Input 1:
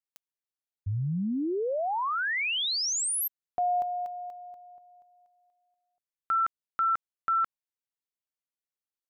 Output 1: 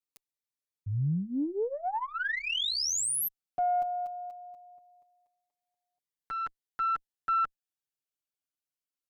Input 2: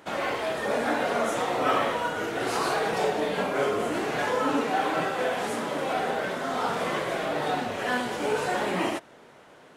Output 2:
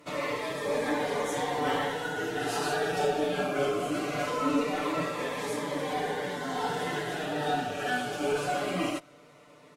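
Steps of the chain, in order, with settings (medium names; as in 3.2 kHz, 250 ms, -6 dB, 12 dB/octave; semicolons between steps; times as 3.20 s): comb 6.8 ms, depth 79%; Chebyshev shaper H 4 -28 dB, 5 -32 dB, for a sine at -9.5 dBFS; Shepard-style phaser falling 0.21 Hz; trim -4 dB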